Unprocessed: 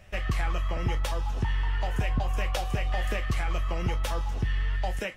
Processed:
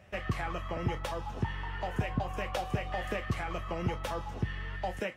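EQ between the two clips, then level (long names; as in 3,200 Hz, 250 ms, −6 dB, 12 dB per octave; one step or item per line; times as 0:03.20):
high-pass filter 100 Hz 12 dB per octave
high-shelf EQ 2,300 Hz −8.5 dB
0.0 dB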